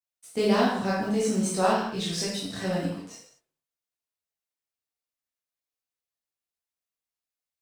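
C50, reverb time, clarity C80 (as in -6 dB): 0.5 dB, not exponential, 4.5 dB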